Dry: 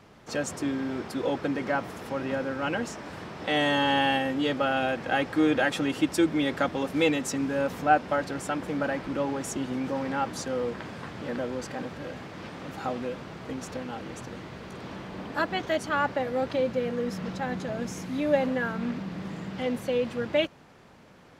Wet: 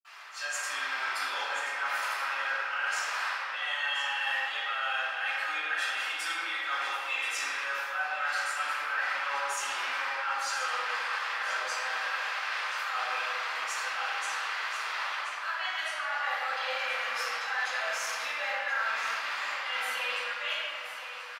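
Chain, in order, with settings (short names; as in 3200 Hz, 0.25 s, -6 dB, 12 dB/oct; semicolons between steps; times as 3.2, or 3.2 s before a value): HPF 1100 Hz 24 dB/oct; reverse; compressor 10:1, threshold -44 dBFS, peak gain reduction 21 dB; reverse; echo 1.029 s -10.5 dB; reverb RT60 2.1 s, pre-delay 46 ms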